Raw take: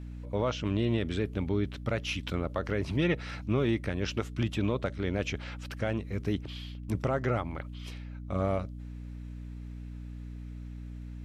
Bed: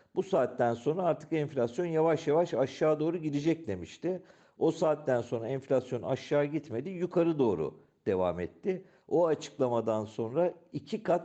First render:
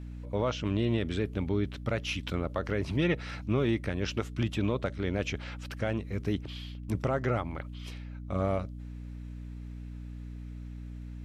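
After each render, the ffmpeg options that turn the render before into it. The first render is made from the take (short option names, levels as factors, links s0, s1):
-af anull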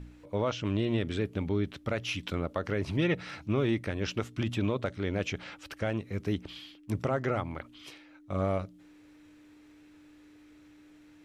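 -af "bandreject=f=60:t=h:w=4,bandreject=f=120:t=h:w=4,bandreject=f=180:t=h:w=4,bandreject=f=240:t=h:w=4"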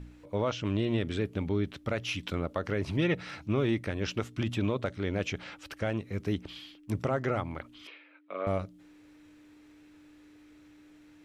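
-filter_complex "[0:a]asettb=1/sr,asplit=3[s0][s1][s2];[s0]atrim=end=7.874[s3];[s1]atrim=start=7.87:end=8.47,asetpts=PTS-STARTPTS,afade=t=in:d=0.004:c=qsin,afade=t=out:st=0.596:d=0.004:c=qsin,highpass=f=330:w=0.5412,highpass=f=330:w=1.3066,equalizer=f=340:t=q:w=4:g=-5,equalizer=f=780:t=q:w=4:g=-8,equalizer=f=2400:t=q:w=4:g=5,lowpass=f=3300:w=0.5412,lowpass=f=3300:w=1.3066[s4];[s2]atrim=start=8.466[s5];[s3][s4]acrossfade=d=0.004:c1=hsin:c2=qsin[s6];[s6][s5]acrossfade=d=0.004:c1=qsin:c2=hsin"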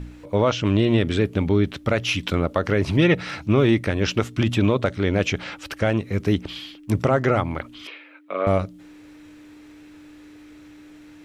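-af "volume=3.35"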